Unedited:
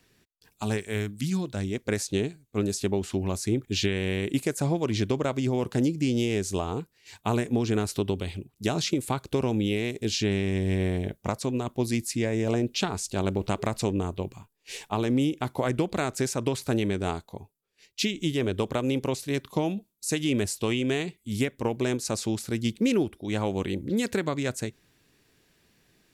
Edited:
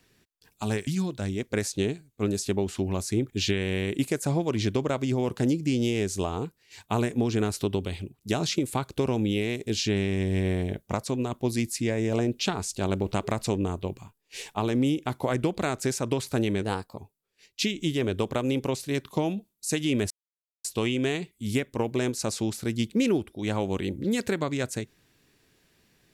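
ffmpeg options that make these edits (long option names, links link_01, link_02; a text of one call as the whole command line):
ffmpeg -i in.wav -filter_complex "[0:a]asplit=5[link_01][link_02][link_03][link_04][link_05];[link_01]atrim=end=0.872[link_06];[link_02]atrim=start=1.218:end=16.974[link_07];[link_03]atrim=start=16.97:end=17.37,asetpts=PTS-STARTPTS,asetrate=49833,aresample=44100[link_08];[link_04]atrim=start=17.366:end=20.5,asetpts=PTS-STARTPTS,afade=type=out:start_time=3.13:duration=0.004:curve=hsin,apad=pad_dur=0.54[link_09];[link_05]atrim=start=20.5,asetpts=PTS-STARTPTS,afade=type=in:duration=0.004:curve=hsin[link_10];[link_06][link_07]acrossfade=duration=0.004:curve1=hsin:curve2=hsin[link_11];[link_11][link_08]acrossfade=duration=0.004:curve1=hsin:curve2=hsin[link_12];[link_09][link_10]concat=n=2:v=0:a=1[link_13];[link_12][link_13]acrossfade=duration=0.004:curve1=hsin:curve2=hsin" out.wav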